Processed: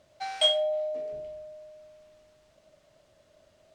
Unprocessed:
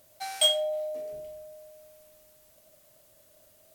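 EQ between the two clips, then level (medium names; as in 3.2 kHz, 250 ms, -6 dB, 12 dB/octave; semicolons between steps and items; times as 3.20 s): distance through air 130 m; +2.5 dB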